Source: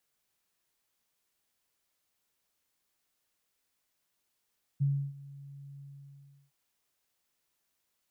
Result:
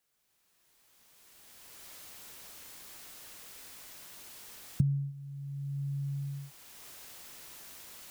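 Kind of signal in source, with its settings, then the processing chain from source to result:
ADSR sine 140 Hz, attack 20 ms, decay 309 ms, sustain -21 dB, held 1.00 s, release 714 ms -23.5 dBFS
recorder AGC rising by 16 dB/s

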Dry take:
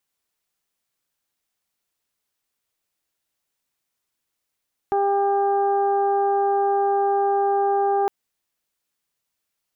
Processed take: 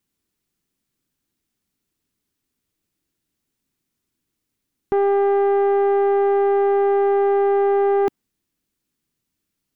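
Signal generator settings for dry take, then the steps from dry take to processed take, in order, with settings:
steady additive tone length 3.16 s, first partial 399 Hz, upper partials 1.5/-13.5/-20 dB, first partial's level -21 dB
resonant low shelf 430 Hz +11.5 dB, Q 1.5; saturation -15.5 dBFS; dynamic bell 910 Hz, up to +6 dB, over -36 dBFS, Q 0.89

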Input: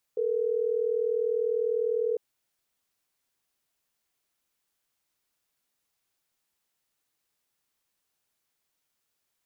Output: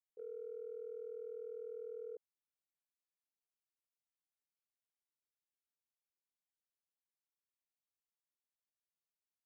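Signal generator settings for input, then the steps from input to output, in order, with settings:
call progress tone ringback tone, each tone -27 dBFS
gate -25 dBFS, range -24 dB; peak limiter -40.5 dBFS

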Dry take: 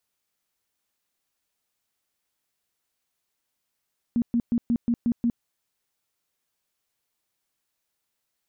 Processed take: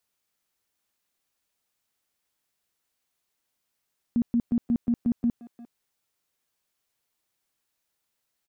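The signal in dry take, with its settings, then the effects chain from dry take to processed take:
tone bursts 236 Hz, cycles 14, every 0.18 s, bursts 7, -19 dBFS
speakerphone echo 350 ms, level -14 dB

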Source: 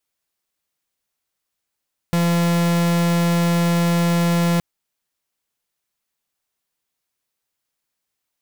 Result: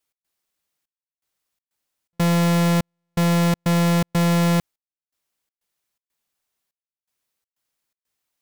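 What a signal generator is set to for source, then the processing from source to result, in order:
pulse 171 Hz, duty 44% -17.5 dBFS 2.47 s
trance gate "x.xxxxx...xxx.xx" 123 bpm -60 dB

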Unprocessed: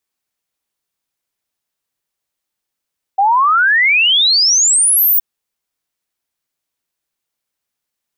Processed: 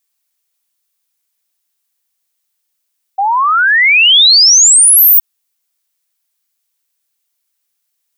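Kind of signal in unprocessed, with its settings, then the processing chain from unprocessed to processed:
log sweep 760 Hz -> 16 kHz 2.02 s -8.5 dBFS
tilt EQ +3 dB/octave; peak limiter -3 dBFS

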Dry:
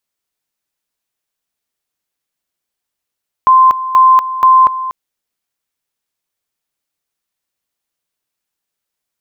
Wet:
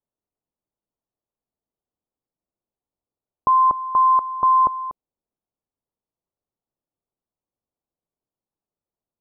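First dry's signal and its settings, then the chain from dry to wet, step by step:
two-level tone 1.04 kHz -3.5 dBFS, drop 13.5 dB, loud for 0.24 s, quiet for 0.24 s, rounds 3
Bessel low-pass 650 Hz, order 8

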